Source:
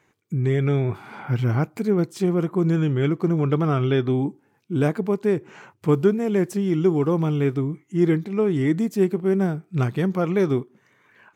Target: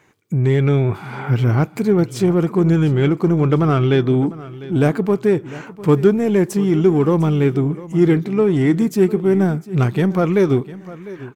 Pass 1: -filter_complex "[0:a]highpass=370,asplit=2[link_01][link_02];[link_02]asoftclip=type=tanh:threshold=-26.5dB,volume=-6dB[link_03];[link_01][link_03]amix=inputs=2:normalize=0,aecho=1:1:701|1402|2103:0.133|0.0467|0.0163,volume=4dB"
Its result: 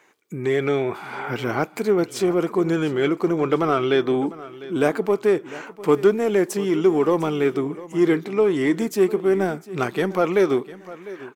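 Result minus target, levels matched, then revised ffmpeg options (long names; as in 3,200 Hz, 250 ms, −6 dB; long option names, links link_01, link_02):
500 Hz band +3.0 dB
-filter_complex "[0:a]asplit=2[link_01][link_02];[link_02]asoftclip=type=tanh:threshold=-26.5dB,volume=-6dB[link_03];[link_01][link_03]amix=inputs=2:normalize=0,aecho=1:1:701|1402|2103:0.133|0.0467|0.0163,volume=4dB"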